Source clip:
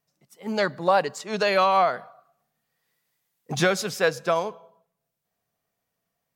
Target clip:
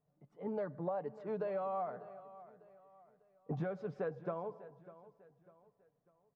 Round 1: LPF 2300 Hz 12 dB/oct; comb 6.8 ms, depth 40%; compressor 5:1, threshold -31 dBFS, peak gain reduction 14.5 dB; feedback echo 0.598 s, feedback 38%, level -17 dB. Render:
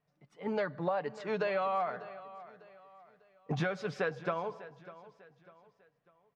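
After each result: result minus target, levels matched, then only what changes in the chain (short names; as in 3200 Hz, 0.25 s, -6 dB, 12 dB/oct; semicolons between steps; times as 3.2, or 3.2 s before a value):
2000 Hz band +10.0 dB; compressor: peak gain reduction -3.5 dB
change: LPF 790 Hz 12 dB/oct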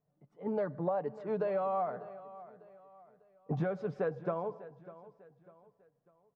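compressor: peak gain reduction -5 dB
change: compressor 5:1, threshold -37.5 dBFS, peak gain reduction 17.5 dB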